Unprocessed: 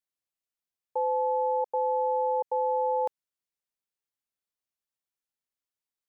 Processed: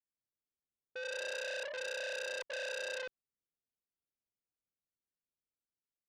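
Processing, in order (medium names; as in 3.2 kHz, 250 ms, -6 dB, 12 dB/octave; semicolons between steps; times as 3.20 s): boxcar filter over 48 samples; ever faster or slower copies 128 ms, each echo +1 st, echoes 3; transformer saturation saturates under 4 kHz; trim -1 dB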